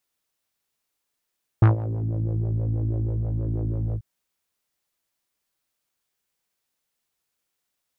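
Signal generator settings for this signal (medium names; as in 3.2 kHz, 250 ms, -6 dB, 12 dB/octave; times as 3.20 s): synth patch with filter wobble A2, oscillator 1 triangle, interval -12 st, oscillator 2 level -8 dB, filter lowpass, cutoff 180 Hz, Q 2.2, filter envelope 2.5 oct, filter decay 0.41 s, attack 4.8 ms, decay 0.13 s, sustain -17 dB, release 0.06 s, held 2.33 s, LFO 6.2 Hz, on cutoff 0.6 oct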